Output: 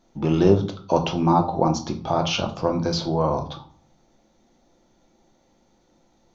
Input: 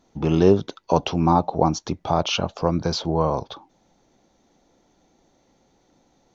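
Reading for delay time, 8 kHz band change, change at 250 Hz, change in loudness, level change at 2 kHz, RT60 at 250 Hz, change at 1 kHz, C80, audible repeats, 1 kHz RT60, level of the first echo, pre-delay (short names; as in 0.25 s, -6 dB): none, n/a, 0.0 dB, -0.5 dB, -0.5 dB, 0.65 s, -0.5 dB, 17.5 dB, none, 0.45 s, none, 3 ms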